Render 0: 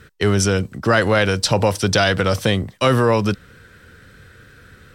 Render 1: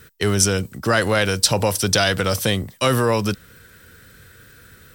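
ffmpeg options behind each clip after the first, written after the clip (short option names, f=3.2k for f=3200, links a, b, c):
-af "aemphasis=mode=production:type=50fm,volume=-2.5dB"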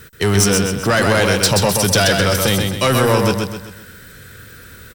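-af "asoftclip=type=tanh:threshold=-15.5dB,aecho=1:1:129|258|387|516|645:0.631|0.265|0.111|0.0467|0.0196,volume=6dB"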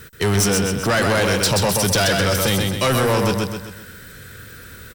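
-af "asoftclip=type=tanh:threshold=-13dB"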